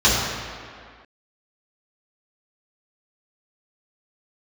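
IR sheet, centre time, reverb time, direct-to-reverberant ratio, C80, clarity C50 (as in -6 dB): 111 ms, 2.1 s, -9.0 dB, 1.0 dB, -0.5 dB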